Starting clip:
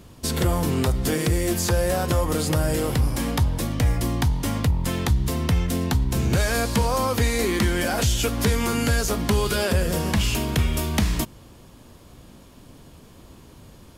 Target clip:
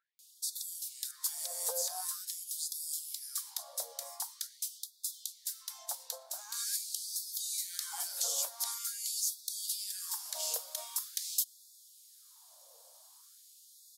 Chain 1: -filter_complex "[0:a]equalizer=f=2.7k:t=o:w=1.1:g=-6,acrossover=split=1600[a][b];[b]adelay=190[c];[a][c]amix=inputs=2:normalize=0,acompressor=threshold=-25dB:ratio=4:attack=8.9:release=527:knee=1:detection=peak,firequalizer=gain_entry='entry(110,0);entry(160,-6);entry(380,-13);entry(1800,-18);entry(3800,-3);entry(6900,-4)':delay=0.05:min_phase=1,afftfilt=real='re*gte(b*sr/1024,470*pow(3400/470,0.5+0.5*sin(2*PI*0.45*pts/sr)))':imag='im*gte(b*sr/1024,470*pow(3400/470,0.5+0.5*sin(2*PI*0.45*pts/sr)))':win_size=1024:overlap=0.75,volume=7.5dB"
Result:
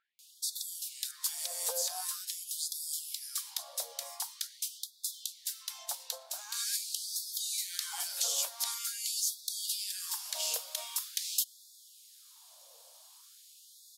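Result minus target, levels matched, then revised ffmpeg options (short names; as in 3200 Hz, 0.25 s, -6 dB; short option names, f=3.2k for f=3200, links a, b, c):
2000 Hz band +4.5 dB
-filter_complex "[0:a]equalizer=f=2.7k:t=o:w=1.1:g=-16.5,acrossover=split=1600[a][b];[b]adelay=190[c];[a][c]amix=inputs=2:normalize=0,acompressor=threshold=-25dB:ratio=4:attack=8.9:release=527:knee=1:detection=peak,firequalizer=gain_entry='entry(110,0);entry(160,-6);entry(380,-13);entry(1800,-18);entry(3800,-3);entry(6900,-4)':delay=0.05:min_phase=1,afftfilt=real='re*gte(b*sr/1024,470*pow(3400/470,0.5+0.5*sin(2*PI*0.45*pts/sr)))':imag='im*gte(b*sr/1024,470*pow(3400/470,0.5+0.5*sin(2*PI*0.45*pts/sr)))':win_size=1024:overlap=0.75,volume=7.5dB"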